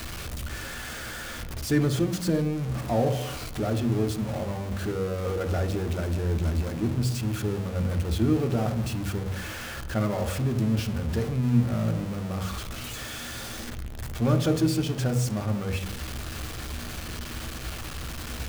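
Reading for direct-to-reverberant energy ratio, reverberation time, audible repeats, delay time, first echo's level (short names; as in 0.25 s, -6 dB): 8.0 dB, 1.0 s, none, none, none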